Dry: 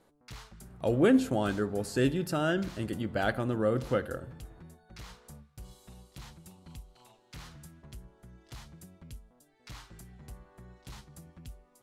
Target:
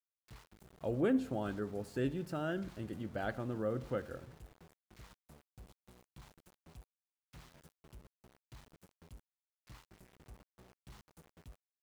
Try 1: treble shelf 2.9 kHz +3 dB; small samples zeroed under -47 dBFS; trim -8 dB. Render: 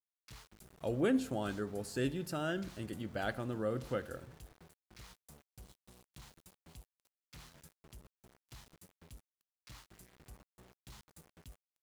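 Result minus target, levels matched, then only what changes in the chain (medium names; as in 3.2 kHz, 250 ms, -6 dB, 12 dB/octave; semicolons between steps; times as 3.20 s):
8 kHz band +8.5 dB
change: treble shelf 2.9 kHz -9 dB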